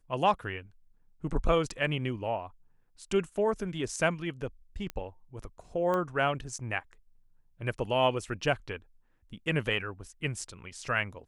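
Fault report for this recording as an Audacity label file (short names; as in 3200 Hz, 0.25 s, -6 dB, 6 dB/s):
4.900000	4.900000	pop -21 dBFS
5.940000	5.940000	pop -20 dBFS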